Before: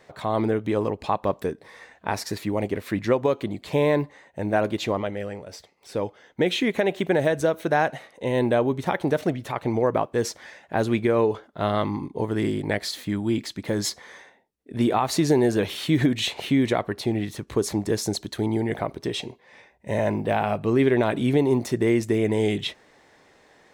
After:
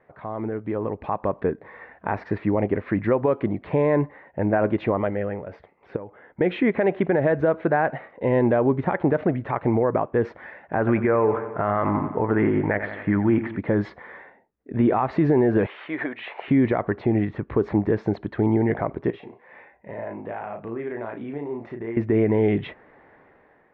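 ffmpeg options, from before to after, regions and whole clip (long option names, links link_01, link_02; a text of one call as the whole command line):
ffmpeg -i in.wav -filter_complex "[0:a]asettb=1/sr,asplit=3[link_01][link_02][link_03];[link_01]atrim=end=5.964[link_04];[link_02]atrim=start=5.96:end=6.41,asetpts=PTS-STARTPTS,afade=type=in:duration=0.004:curve=qsin,afade=type=out:start_time=0.446:duration=0.004:curve=qsin,lowpass=2800,acompressor=threshold=-38dB:ratio=6:attack=3.2:release=140:knee=1:detection=peak[link_05];[link_03]atrim=start=6.406[link_06];[link_04][link_05]acrossfade=duration=0.004:curve1=hsin:curve2=qsin[link_07];[link_07][link_06]acrossfade=duration=0.004:curve1=qsin:curve2=hsin,asettb=1/sr,asplit=3[link_08][link_09][link_10];[link_08]atrim=end=10.784[link_11];[link_09]atrim=start=10.78:end=13.58,asetpts=PTS-STARTPTS,afade=type=in:duration=0.004:curve=qsin,afade=type=out:start_time=2.796:duration=0.004:curve=qsin,lowpass=frequency=2900:width=0.5412,lowpass=frequency=2900:width=1.3066,equalizer=frequency=1400:width=0.61:gain=7,aecho=1:1:88|176|264|352|440|528:0.178|0.107|0.064|0.0384|0.023|0.0138,atrim=end_sample=123480[link_12];[link_10]atrim=start=13.576[link_13];[link_11][link_12]acrossfade=duration=0.004:curve1=hsin:curve2=qsin[link_14];[link_14][link_13]acrossfade=duration=0.004:curve1=qsin:curve2=hsin,asettb=1/sr,asplit=3[link_15][link_16][link_17];[link_15]atrim=end=15.664[link_18];[link_16]atrim=start=15.66:end=16.48,asetpts=PTS-STARTPTS,afade=type=in:duration=0.004:curve=qsin,afade=type=out:start_time=0.816:duration=0.004:curve=qsin,highpass=680,acrossover=split=3200[link_19][link_20];[link_20]acompressor=threshold=-43dB:ratio=4:attack=1:release=60[link_21];[link_19][link_21]amix=inputs=2:normalize=0[link_22];[link_17]atrim=start=16.476[link_23];[link_18][link_22]acrossfade=duration=0.004:curve1=hsin:curve2=qsin[link_24];[link_24][link_23]acrossfade=duration=0.004:curve1=qsin:curve2=hsin,asettb=1/sr,asplit=3[link_25][link_26][link_27];[link_25]atrim=end=19.104[link_28];[link_26]atrim=start=19.1:end=21.97,asetpts=PTS-STARTPTS,afade=type=in:duration=0.004:curve=qsin,afade=type=out:start_time=2.866:duration=0.004:curve=qsin,lowshelf=frequency=220:gain=-11,acompressor=threshold=-45dB:ratio=2:attack=3.2:release=140:knee=1:detection=peak,asplit=2[link_29][link_30];[link_30]adelay=35,volume=-5dB[link_31];[link_29][link_31]amix=inputs=2:normalize=0,atrim=end_sample=126567[link_32];[link_27]atrim=start=21.966[link_33];[link_28][link_32]acrossfade=duration=0.004:curve1=hsin:curve2=qsin[link_34];[link_34][link_33]acrossfade=duration=0.004:curve1=qsin:curve2=hsin,lowpass=frequency=2000:width=0.5412,lowpass=frequency=2000:width=1.3066,alimiter=limit=-15.5dB:level=0:latency=1:release=78,dynaudnorm=framelen=660:gausssize=3:maxgain=10dB,volume=-5dB" out.wav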